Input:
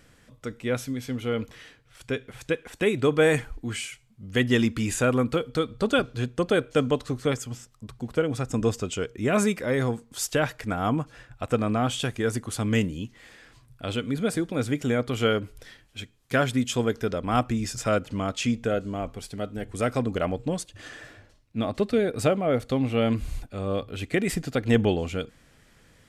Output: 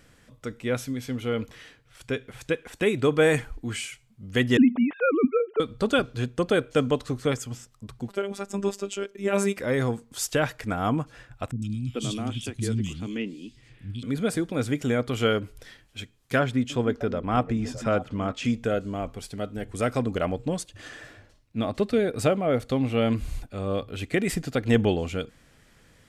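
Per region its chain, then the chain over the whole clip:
0:04.57–0:05.60: three sine waves on the formant tracks + low-pass filter 2,600 Hz + low-shelf EQ 230 Hz +8 dB
0:08.09–0:09.57: low shelf with overshoot 190 Hz −11.5 dB, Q 1.5 + phases set to zero 199 Hz
0:11.51–0:14.03: Bessel low-pass filter 8,500 Hz + flat-topped bell 950 Hz −11.5 dB 2.3 octaves + three-band delay without the direct sound lows, highs, mids 110/430 ms, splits 230/3,000 Hz
0:16.39–0:18.45: low-pass filter 2,400 Hz 6 dB per octave + echo through a band-pass that steps 307 ms, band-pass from 230 Hz, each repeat 1.4 octaves, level −9 dB
whole clip: no processing

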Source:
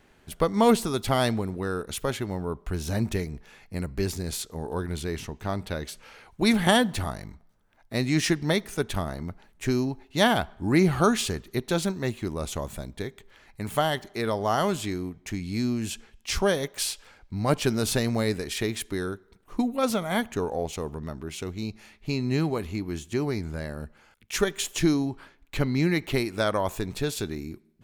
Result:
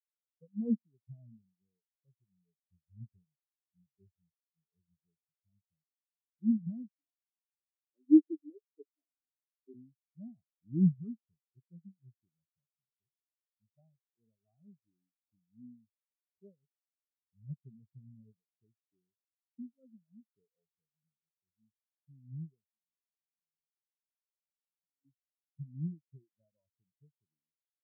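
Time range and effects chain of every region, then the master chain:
0:06.88–0:09.74: elliptic high-pass filter 300 Hz, stop band 50 dB + spectral tilt −4 dB per octave + comb filter 7.1 ms, depth 36%
0:22.66–0:25.05: comb filter 4.7 ms, depth 50% + downward compressor 12 to 1, threshold −37 dBFS
whole clip: high-pass filter 110 Hz 24 dB per octave; RIAA equalisation playback; every bin expanded away from the loudest bin 4 to 1; level −8 dB

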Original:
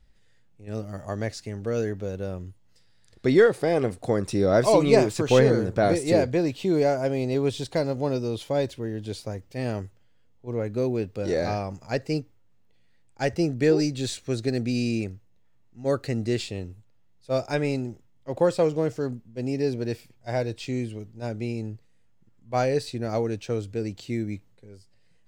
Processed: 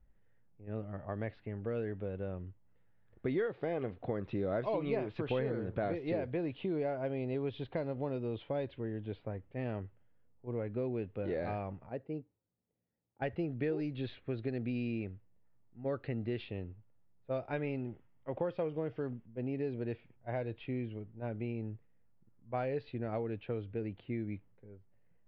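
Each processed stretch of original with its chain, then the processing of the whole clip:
0:11.89–0:13.22: high-pass filter 300 Hz 6 dB per octave + parametric band 1,900 Hz −13.5 dB 2.9 octaves
0:17.67–0:19.26: notch filter 4,000 Hz, Q 9.5 + one half of a high-frequency compander encoder only
whole clip: Butterworth low-pass 3,400 Hz 36 dB per octave; low-pass that shuts in the quiet parts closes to 1,400 Hz, open at −17.5 dBFS; downward compressor 3 to 1, threshold −27 dBFS; level −6.5 dB

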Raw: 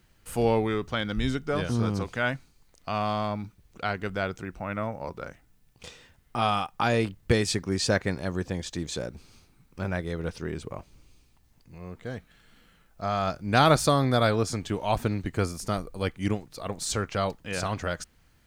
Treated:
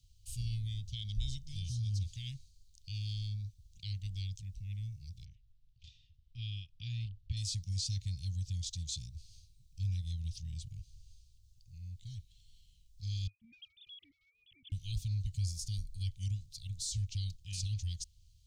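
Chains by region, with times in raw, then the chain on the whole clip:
0:05.25–0:07.37: low-pass filter 5,100 Hz + bass and treble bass −3 dB, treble −15 dB
0:13.27–0:14.72: three sine waves on the formant tracks + downward compressor 10 to 1, threshold −27 dBFS
whole clip: inverse Chebyshev band-stop filter 410–1,500 Hz, stop band 50 dB; brickwall limiter −25.5 dBFS; drawn EQ curve 100 Hz 0 dB, 230 Hz −26 dB, 440 Hz −14 dB, 650 Hz −29 dB, 960 Hz −11 dB, 2,100 Hz −12 dB, 3,700 Hz −4 dB, 6,400 Hz −2 dB, 12,000 Hz −12 dB; level +1 dB

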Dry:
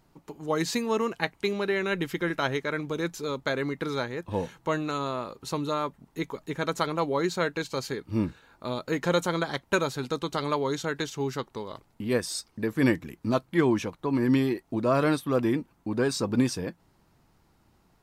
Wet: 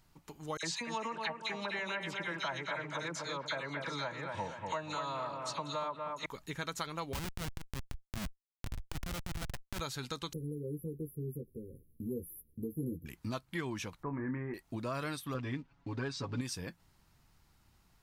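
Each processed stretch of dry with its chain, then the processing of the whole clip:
0:00.57–0:06.26: loudspeaker in its box 130–8,400 Hz, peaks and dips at 250 Hz −4 dB, 390 Hz −5 dB, 620 Hz +8 dB, 940 Hz +9 dB + all-pass dispersion lows, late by 61 ms, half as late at 2,100 Hz + bucket-brigade delay 240 ms, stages 4,096, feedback 48%, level −7 dB
0:07.13–0:09.80: loudspeaker in its box 150–4,600 Hz, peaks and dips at 200 Hz +9 dB, 470 Hz −6 dB, 850 Hz +5 dB + comparator with hysteresis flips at −26 dBFS + saturating transformer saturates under 68 Hz
0:10.33–0:13.06: linear-phase brick-wall band-stop 530–10,000 Hz + double-tracking delay 13 ms −3 dB
0:14.03–0:14.54: Butterworth low-pass 2,000 Hz 48 dB per octave + double-tracking delay 28 ms −8 dB
0:15.34–0:16.41: comb filter 7.2 ms, depth 86% + floating-point word with a short mantissa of 4 bits + high-frequency loss of the air 160 metres
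whole clip: parametric band 400 Hz −11.5 dB 3 octaves; downward compressor 3 to 1, threshold −37 dBFS; level +1 dB

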